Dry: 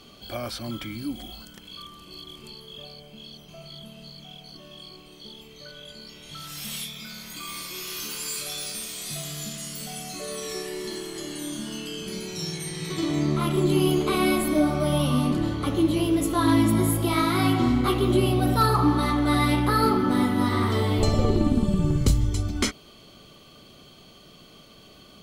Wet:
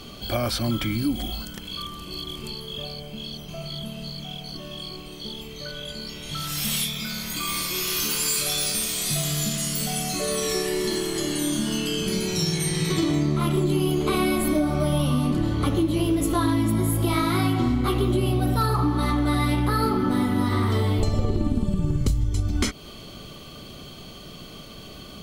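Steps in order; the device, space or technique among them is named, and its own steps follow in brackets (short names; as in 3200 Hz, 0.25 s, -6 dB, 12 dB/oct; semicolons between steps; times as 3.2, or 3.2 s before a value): ASMR close-microphone chain (low shelf 140 Hz +7 dB; compressor, threshold -27 dBFS, peak gain reduction 16 dB; high shelf 12000 Hz +3.5 dB); gain +7.5 dB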